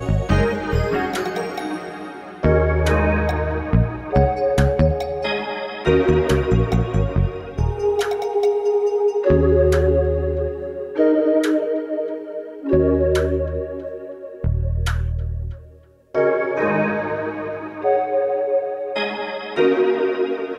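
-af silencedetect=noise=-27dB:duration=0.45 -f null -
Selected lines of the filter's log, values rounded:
silence_start: 15.53
silence_end: 16.15 | silence_duration: 0.61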